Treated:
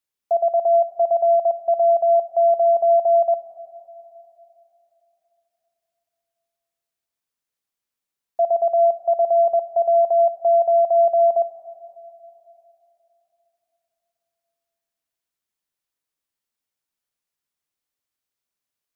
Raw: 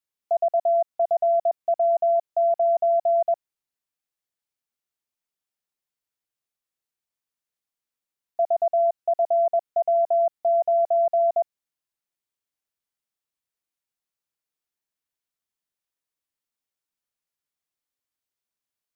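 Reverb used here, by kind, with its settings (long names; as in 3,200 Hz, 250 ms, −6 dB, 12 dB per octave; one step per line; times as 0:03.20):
dense smooth reverb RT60 3.3 s, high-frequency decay 0.9×, DRR 13 dB
level +2.5 dB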